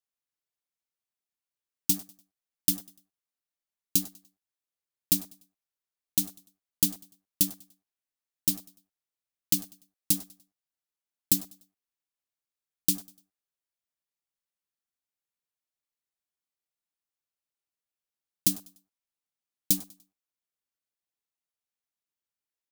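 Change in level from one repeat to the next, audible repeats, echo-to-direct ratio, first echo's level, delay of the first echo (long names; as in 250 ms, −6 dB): −9.0 dB, 2, −20.5 dB, −21.0 dB, 98 ms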